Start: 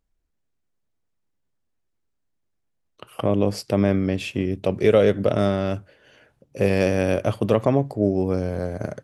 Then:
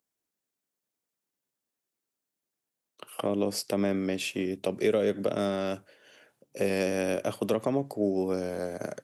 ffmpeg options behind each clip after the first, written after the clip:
-filter_complex "[0:a]highpass=230,highshelf=f=5.7k:g=12,acrossover=split=350[a][b];[b]acompressor=threshold=-23dB:ratio=6[c];[a][c]amix=inputs=2:normalize=0,volume=-4dB"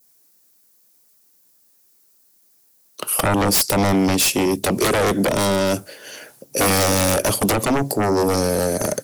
-af "aexciter=amount=2.5:drive=6:freq=4.4k,aeval=exprs='0.237*sin(PI/2*5.01*val(0)/0.237)':c=same,adynamicequalizer=threshold=0.0282:dfrequency=1400:dqfactor=0.73:tfrequency=1400:tqfactor=0.73:attack=5:release=100:ratio=0.375:range=2.5:mode=cutabove:tftype=bell"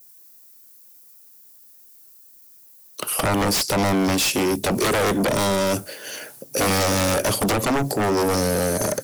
-filter_complex "[0:a]highshelf=f=11k:g=7.5,acrossover=split=7100[a][b];[b]acompressor=threshold=-28dB:ratio=4:attack=1:release=60[c];[a][c]amix=inputs=2:normalize=0,aeval=exprs='0.282*(cos(1*acos(clip(val(0)/0.282,-1,1)))-cos(1*PI/2))+0.0447*(cos(5*acos(clip(val(0)/0.282,-1,1)))-cos(5*PI/2))':c=same,volume=-2.5dB"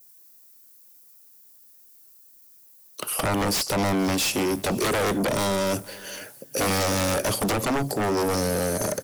-af "aecho=1:1:476:0.0708,volume=-3.5dB"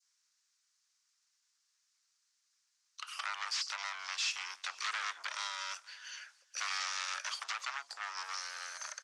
-af "asuperpass=centerf=2800:order=8:qfactor=0.51,volume=-8dB"

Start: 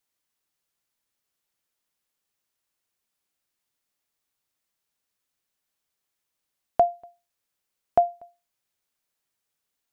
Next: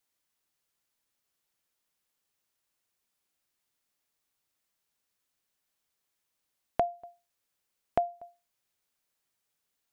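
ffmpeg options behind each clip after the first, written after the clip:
-af "acompressor=threshold=-28dB:ratio=2.5"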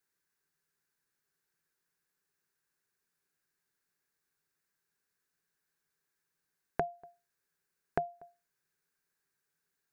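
-af "equalizer=f=160:t=o:w=0.33:g=11,equalizer=f=400:t=o:w=0.33:g=9,equalizer=f=630:t=o:w=0.33:g=-6,equalizer=f=1.6k:t=o:w=0.33:g=12,equalizer=f=3.15k:t=o:w=0.33:g=-7,volume=-3.5dB"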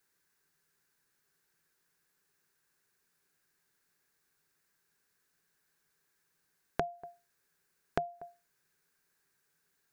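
-af "acompressor=threshold=-41dB:ratio=2,volume=7dB"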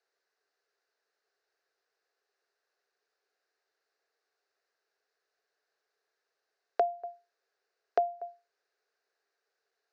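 -af "highpass=f=420:w=0.5412,highpass=f=420:w=1.3066,equalizer=f=450:t=q:w=4:g=6,equalizer=f=680:t=q:w=4:g=9,equalizer=f=960:t=q:w=4:g=-6,equalizer=f=1.6k:t=q:w=4:g=-4,equalizer=f=2.3k:t=q:w=4:g=-5,equalizer=f=3.3k:t=q:w=4:g=-7,lowpass=f=5k:w=0.5412,lowpass=f=5k:w=1.3066"

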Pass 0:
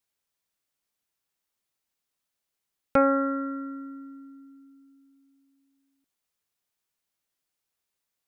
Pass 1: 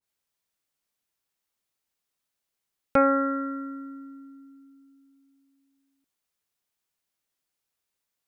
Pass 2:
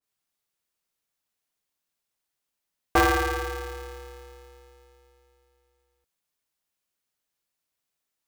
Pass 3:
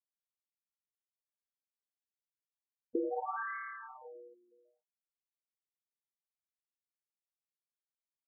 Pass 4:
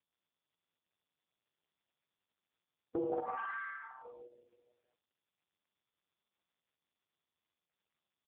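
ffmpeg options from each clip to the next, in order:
-af "adynamicequalizer=threshold=0.02:dfrequency=1500:dqfactor=0.7:tfrequency=1500:tqfactor=0.7:attack=5:release=100:ratio=0.375:range=2.5:mode=boostabove:tftype=highshelf"
-af "aeval=exprs='val(0)*sgn(sin(2*PI*210*n/s))':c=same"
-af "acompressor=threshold=-30dB:ratio=2.5,aeval=exprs='sgn(val(0))*max(abs(val(0))-0.00237,0)':c=same,afftfilt=real='re*between(b*sr/1024,320*pow(1600/320,0.5+0.5*sin(2*PI*0.62*pts/sr))/1.41,320*pow(1600/320,0.5+0.5*sin(2*PI*0.62*pts/sr))*1.41)':imag='im*between(b*sr/1024,320*pow(1600/320,0.5+0.5*sin(2*PI*0.62*pts/sr))/1.41,320*pow(1600/320,0.5+0.5*sin(2*PI*0.62*pts/sr))*1.41)':win_size=1024:overlap=0.75,volume=1dB"
-af "aeval=exprs='(tanh(20*val(0)+0.5)-tanh(0.5))/20':c=same,aecho=1:1:145:0.422,volume=2dB" -ar 8000 -c:a libopencore_amrnb -b:a 5150

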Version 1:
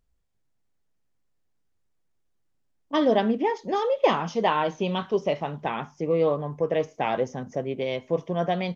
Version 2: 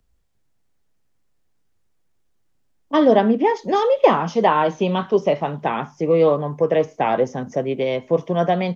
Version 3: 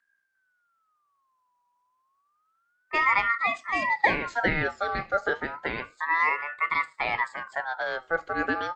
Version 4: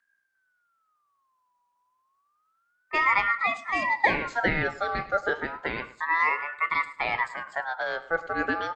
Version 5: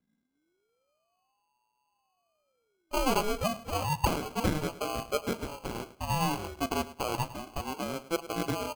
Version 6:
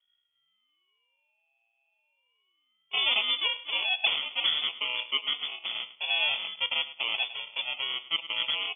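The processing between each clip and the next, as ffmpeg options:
-filter_complex "[0:a]acrossover=split=110|340|1900[a][b][c][d];[a]acompressor=threshold=-57dB:ratio=6[e];[d]alimiter=level_in=8dB:limit=-24dB:level=0:latency=1:release=408,volume=-8dB[f];[e][b][c][f]amix=inputs=4:normalize=0,volume=7dB"
-af "aeval=exprs='val(0)*sin(2*PI*1300*n/s+1300*0.25/0.3*sin(2*PI*0.3*n/s))':c=same,volume=-6dB"
-filter_complex "[0:a]asplit=2[a][b];[b]adelay=105,lowpass=f=4.1k:p=1,volume=-16dB,asplit=2[c][d];[d]adelay=105,lowpass=f=4.1k:p=1,volume=0.27,asplit=2[e][f];[f]adelay=105,lowpass=f=4.1k:p=1,volume=0.27[g];[a][c][e][g]amix=inputs=4:normalize=0"
-af "acrusher=samples=24:mix=1:aa=0.000001,volume=-4.5dB"
-filter_complex "[0:a]asplit=2[a][b];[b]asoftclip=type=hard:threshold=-26.5dB,volume=-3dB[c];[a][c]amix=inputs=2:normalize=0,lowpass=f=3k:t=q:w=0.5098,lowpass=f=3k:t=q:w=0.6013,lowpass=f=3k:t=q:w=0.9,lowpass=f=3k:t=q:w=2.563,afreqshift=-3500,volume=-2dB"

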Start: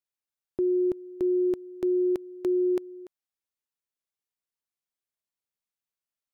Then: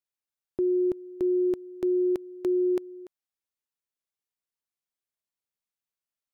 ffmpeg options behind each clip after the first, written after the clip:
-af anull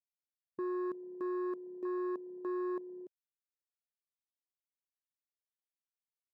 -af "volume=30dB,asoftclip=hard,volume=-30dB,afwtdn=0.0112,volume=-4.5dB"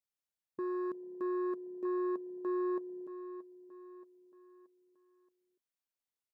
-af "aecho=1:1:627|1254|1881|2508:0.211|0.0951|0.0428|0.0193"

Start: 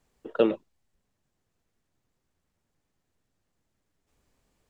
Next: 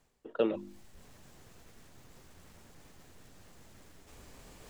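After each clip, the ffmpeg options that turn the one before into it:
-af "bandreject=f=50:t=h:w=6,bandreject=f=100:t=h:w=6,bandreject=f=150:t=h:w=6,bandreject=f=200:t=h:w=6,bandreject=f=250:t=h:w=6,bandreject=f=300:t=h:w=6,bandreject=f=350:t=h:w=6,areverse,acompressor=mode=upward:threshold=-25dB:ratio=2.5,areverse,volume=-6.5dB"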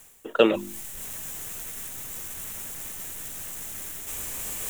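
-af "equalizer=f=4.7k:t=o:w=0.62:g=-12,crystalizer=i=9.5:c=0,volume=8.5dB"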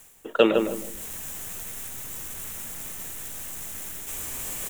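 -filter_complex "[0:a]asplit=2[a][b];[b]adelay=156,lowpass=f=1.6k:p=1,volume=-4.5dB,asplit=2[c][d];[d]adelay=156,lowpass=f=1.6k:p=1,volume=0.27,asplit=2[e][f];[f]adelay=156,lowpass=f=1.6k:p=1,volume=0.27,asplit=2[g][h];[h]adelay=156,lowpass=f=1.6k:p=1,volume=0.27[i];[a][c][e][g][i]amix=inputs=5:normalize=0"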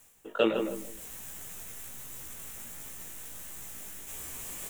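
-af "flanger=delay=15:depth=4.1:speed=1.4,volume=-4dB"

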